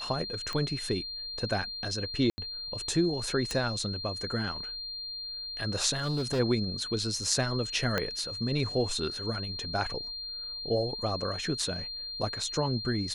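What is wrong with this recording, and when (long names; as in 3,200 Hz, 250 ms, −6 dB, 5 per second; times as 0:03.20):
whistle 4,200 Hz −36 dBFS
0:00.53: click −21 dBFS
0:02.30–0:02.38: drop-out 80 ms
0:03.51: click −19 dBFS
0:05.95–0:06.40: clipping −25.5 dBFS
0:07.98: click −13 dBFS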